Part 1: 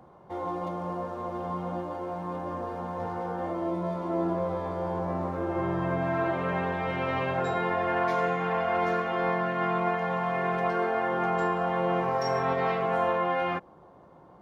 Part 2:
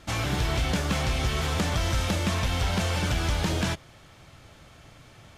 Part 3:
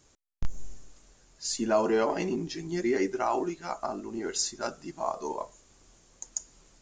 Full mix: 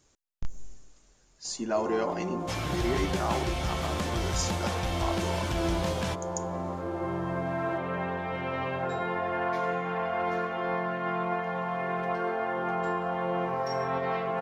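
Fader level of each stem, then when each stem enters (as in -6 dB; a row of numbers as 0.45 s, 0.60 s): -3.0 dB, -5.5 dB, -3.5 dB; 1.45 s, 2.40 s, 0.00 s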